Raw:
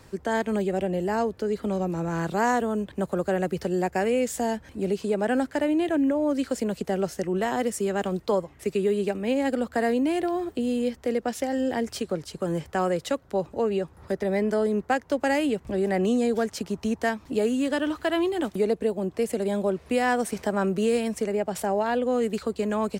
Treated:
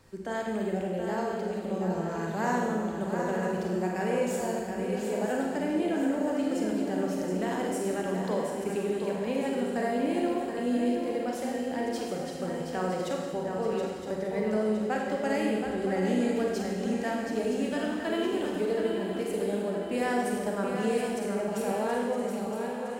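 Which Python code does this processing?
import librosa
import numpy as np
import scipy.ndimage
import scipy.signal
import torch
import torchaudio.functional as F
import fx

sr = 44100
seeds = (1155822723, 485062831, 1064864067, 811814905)

y = fx.fade_out_tail(x, sr, length_s=1.02)
y = fx.echo_swing(y, sr, ms=965, ratio=3, feedback_pct=47, wet_db=-7.0)
y = fx.rev_schroeder(y, sr, rt60_s=1.3, comb_ms=33, drr_db=-0.5)
y = y * 10.0 ** (-8.5 / 20.0)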